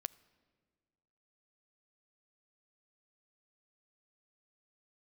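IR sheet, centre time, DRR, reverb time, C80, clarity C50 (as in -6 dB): 2 ms, 19.5 dB, 1.7 s, 22.0 dB, 21.0 dB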